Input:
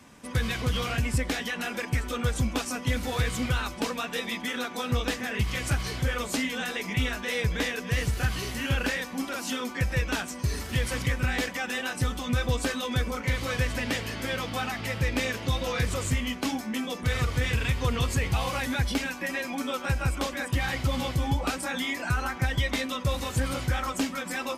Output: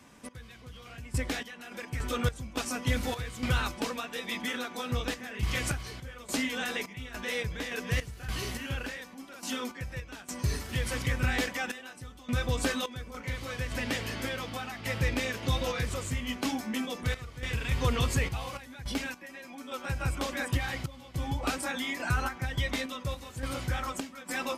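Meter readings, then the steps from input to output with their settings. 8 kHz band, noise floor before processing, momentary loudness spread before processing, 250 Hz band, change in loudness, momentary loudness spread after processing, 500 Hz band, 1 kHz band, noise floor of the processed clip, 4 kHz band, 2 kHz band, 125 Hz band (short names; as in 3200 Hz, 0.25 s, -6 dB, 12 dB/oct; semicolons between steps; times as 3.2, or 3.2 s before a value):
-3.5 dB, -39 dBFS, 4 LU, -4.5 dB, -4.0 dB, 11 LU, -4.0 dB, -4.0 dB, -50 dBFS, -4.0 dB, -4.5 dB, -5.0 dB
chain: de-hum 45.58 Hz, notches 5; random-step tremolo 3.5 Hz, depth 90%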